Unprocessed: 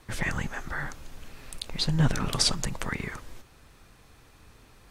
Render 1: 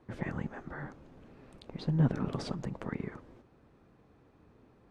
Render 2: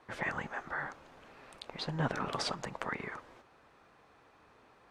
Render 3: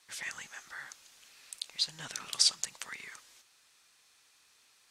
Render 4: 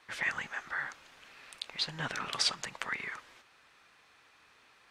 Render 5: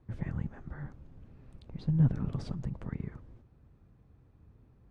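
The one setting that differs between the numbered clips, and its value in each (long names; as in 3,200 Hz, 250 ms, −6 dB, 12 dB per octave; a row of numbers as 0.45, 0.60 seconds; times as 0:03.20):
resonant band-pass, frequency: 290, 810, 6,300, 2,100, 110 Hertz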